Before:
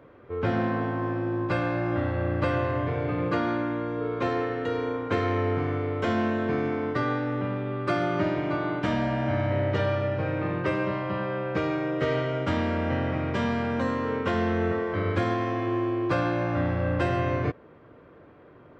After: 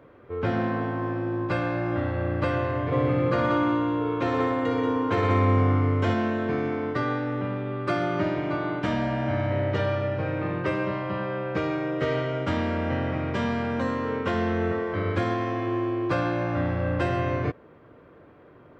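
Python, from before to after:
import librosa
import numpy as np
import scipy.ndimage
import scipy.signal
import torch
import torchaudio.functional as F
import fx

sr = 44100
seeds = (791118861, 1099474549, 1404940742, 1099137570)

y = fx.echo_heads(x, sr, ms=61, heads='all three', feedback_pct=51, wet_db=-8, at=(2.91, 6.13), fade=0.02)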